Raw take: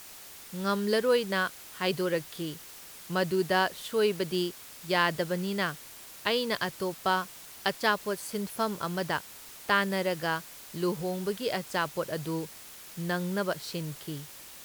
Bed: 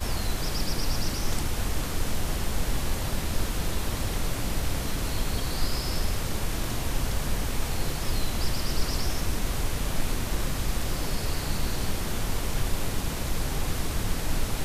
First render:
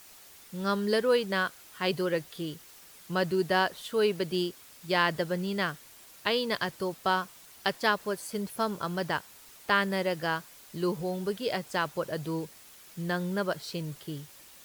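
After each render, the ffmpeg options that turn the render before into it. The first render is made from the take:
ffmpeg -i in.wav -af "afftdn=noise_reduction=6:noise_floor=-48" out.wav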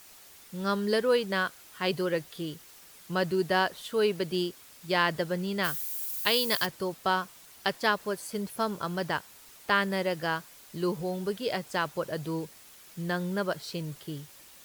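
ffmpeg -i in.wav -filter_complex "[0:a]asplit=3[link_01][link_02][link_03];[link_01]afade=type=out:start_time=5.63:duration=0.02[link_04];[link_02]aemphasis=mode=production:type=75fm,afade=type=in:start_time=5.63:duration=0.02,afade=type=out:start_time=6.65:duration=0.02[link_05];[link_03]afade=type=in:start_time=6.65:duration=0.02[link_06];[link_04][link_05][link_06]amix=inputs=3:normalize=0" out.wav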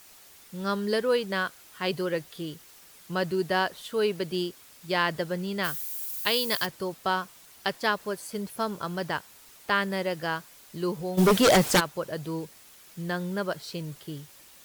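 ffmpeg -i in.wav -filter_complex "[0:a]asplit=3[link_01][link_02][link_03];[link_01]afade=type=out:start_time=11.17:duration=0.02[link_04];[link_02]aeval=exprs='0.188*sin(PI/2*5.01*val(0)/0.188)':channel_layout=same,afade=type=in:start_time=11.17:duration=0.02,afade=type=out:start_time=11.79:duration=0.02[link_05];[link_03]afade=type=in:start_time=11.79:duration=0.02[link_06];[link_04][link_05][link_06]amix=inputs=3:normalize=0" out.wav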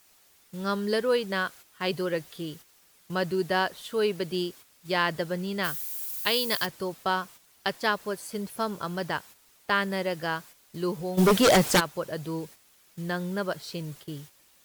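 ffmpeg -i in.wav -af "agate=range=-8dB:threshold=-46dB:ratio=16:detection=peak" out.wav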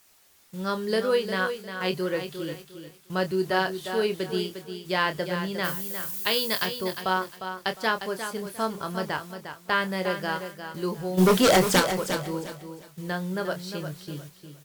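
ffmpeg -i in.wav -filter_complex "[0:a]asplit=2[link_01][link_02];[link_02]adelay=27,volume=-8.5dB[link_03];[link_01][link_03]amix=inputs=2:normalize=0,aecho=1:1:354|708|1062:0.355|0.0923|0.024" out.wav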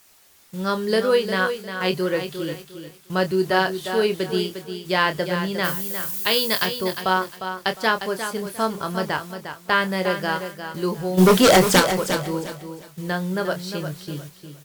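ffmpeg -i in.wav -af "volume=5dB,alimiter=limit=-3dB:level=0:latency=1" out.wav

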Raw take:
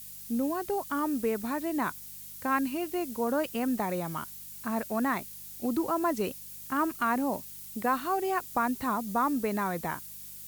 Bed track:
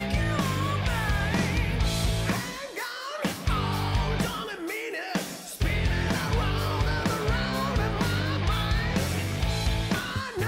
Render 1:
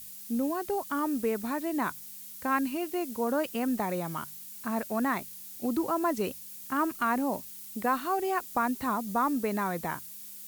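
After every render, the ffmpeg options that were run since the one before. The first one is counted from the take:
ffmpeg -i in.wav -af "bandreject=frequency=50:width_type=h:width=4,bandreject=frequency=100:width_type=h:width=4,bandreject=frequency=150:width_type=h:width=4" out.wav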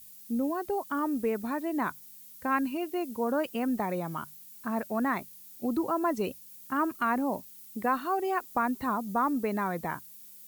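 ffmpeg -i in.wav -af "afftdn=noise_reduction=8:noise_floor=-45" out.wav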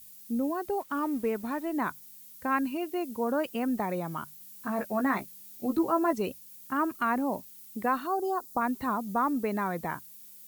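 ffmpeg -i in.wav -filter_complex "[0:a]asettb=1/sr,asplit=3[link_01][link_02][link_03];[link_01]atrim=end=0.804[link_04];[link_02]atrim=start=0.8:end=1.73,asetpts=PTS-STARTPTS,afade=type=in:duration=0.004:curve=qsin,afade=type=out:start_time=0.926:duration=0.004:curve=qsin,aeval=exprs='sgn(val(0))*max(abs(val(0))-0.00224,0)':channel_layout=same[link_05];[link_03]atrim=start=1.726[link_06];[link_04][link_05]acrossfade=duration=0.004:curve1=hsin:curve2=qsin[link_07];[link_07][link_06]acrossfade=duration=0.004:curve1=qsin:curve2=hsin,asettb=1/sr,asplit=3[link_08][link_09][link_10];[link_08]atrim=end=4.394[link_11];[link_09]atrim=start=4.39:end=6.13,asetpts=PTS-STARTPTS,afade=type=in:duration=0.004:curve=qsin,afade=type=out:start_time=1.736:duration=0.004:curve=qsin,asplit=2[link_12][link_13];[link_13]adelay=15,volume=-5dB[link_14];[link_12][link_14]amix=inputs=2:normalize=0,atrim=end_sample=76734[link_15];[link_10]atrim=start=6.126[link_16];[link_11][link_15]acrossfade=duration=0.004:curve1=hsin:curve2=qsin[link_17];[link_17][link_16]acrossfade=duration=0.004:curve1=qsin:curve2=hsin,asplit=3[link_18][link_19][link_20];[link_18]afade=type=out:start_time=8.06:duration=0.02[link_21];[link_19]asuperstop=centerf=2200:order=4:qfactor=0.82,afade=type=in:start_time=8.06:duration=0.02,afade=type=out:start_time=8.6:duration=0.02[link_22];[link_20]afade=type=in:start_time=8.6:duration=0.02[link_23];[link_21][link_22][link_23]amix=inputs=3:normalize=0" out.wav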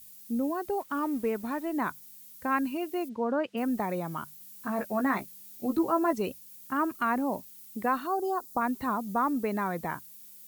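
ffmpeg -i in.wav -filter_complex "[0:a]asplit=3[link_01][link_02][link_03];[link_01]afade=type=out:start_time=3.08:duration=0.02[link_04];[link_02]highpass=100,lowpass=3500,afade=type=in:start_time=3.08:duration=0.02,afade=type=out:start_time=3.56:duration=0.02[link_05];[link_03]afade=type=in:start_time=3.56:duration=0.02[link_06];[link_04][link_05][link_06]amix=inputs=3:normalize=0" out.wav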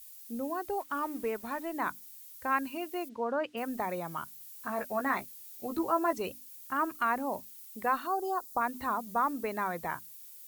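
ffmpeg -i in.wav -af "equalizer=frequency=220:width_type=o:width=1.8:gain=-8,bandreject=frequency=50:width_type=h:width=6,bandreject=frequency=100:width_type=h:width=6,bandreject=frequency=150:width_type=h:width=6,bandreject=frequency=200:width_type=h:width=6,bandreject=frequency=250:width_type=h:width=6,bandreject=frequency=300:width_type=h:width=6" out.wav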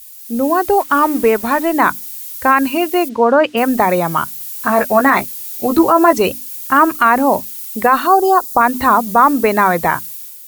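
ffmpeg -i in.wav -af "dynaudnorm=framelen=100:gausssize=7:maxgain=8dB,alimiter=level_in=13dB:limit=-1dB:release=50:level=0:latency=1" out.wav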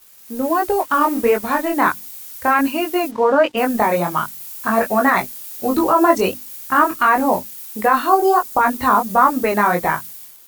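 ffmpeg -i in.wav -af "flanger=delay=19:depth=5:speed=1.4,aeval=exprs='sgn(val(0))*max(abs(val(0))-0.0075,0)':channel_layout=same" out.wav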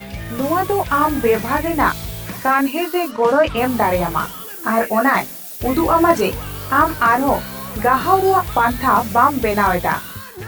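ffmpeg -i in.wav -i bed.wav -filter_complex "[1:a]volume=-3.5dB[link_01];[0:a][link_01]amix=inputs=2:normalize=0" out.wav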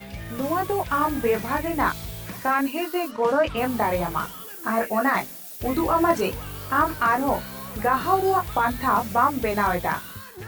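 ffmpeg -i in.wav -af "volume=-6.5dB" out.wav

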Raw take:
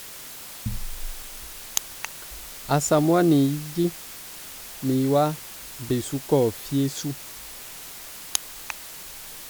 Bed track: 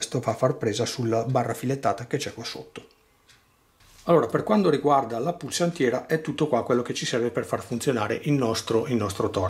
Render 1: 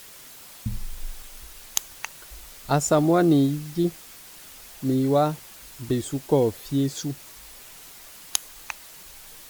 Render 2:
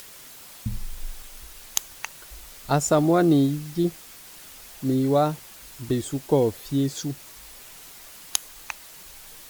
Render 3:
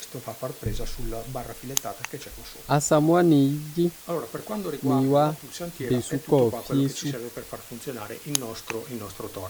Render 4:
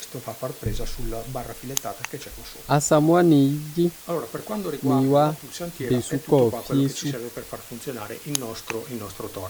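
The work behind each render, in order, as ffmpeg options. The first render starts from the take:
ffmpeg -i in.wav -af "afftdn=noise_reduction=6:noise_floor=-40" out.wav
ffmpeg -i in.wav -af "acompressor=mode=upward:threshold=-42dB:ratio=2.5" out.wav
ffmpeg -i in.wav -i bed.wav -filter_complex "[1:a]volume=-10.5dB[link_01];[0:a][link_01]amix=inputs=2:normalize=0" out.wav
ffmpeg -i in.wav -af "volume=2dB,alimiter=limit=-3dB:level=0:latency=1" out.wav

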